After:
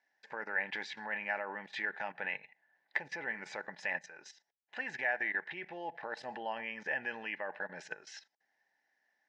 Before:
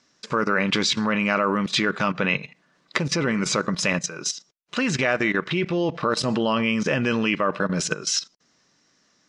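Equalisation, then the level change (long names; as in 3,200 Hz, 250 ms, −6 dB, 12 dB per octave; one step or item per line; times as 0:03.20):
pair of resonant band-passes 1,200 Hz, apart 1.1 octaves
−3.5 dB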